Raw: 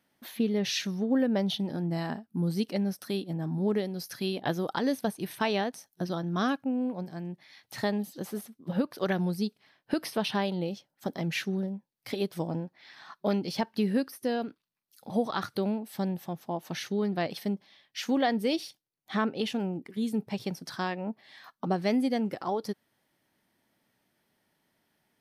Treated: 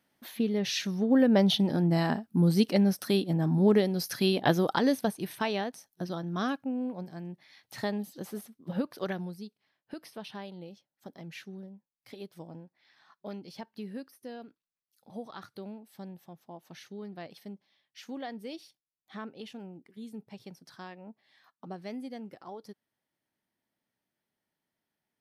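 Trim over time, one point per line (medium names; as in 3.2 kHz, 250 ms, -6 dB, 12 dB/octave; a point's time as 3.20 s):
0.76 s -1 dB
1.40 s +5.5 dB
4.53 s +5.5 dB
5.54 s -3 dB
8.99 s -3 dB
9.44 s -13 dB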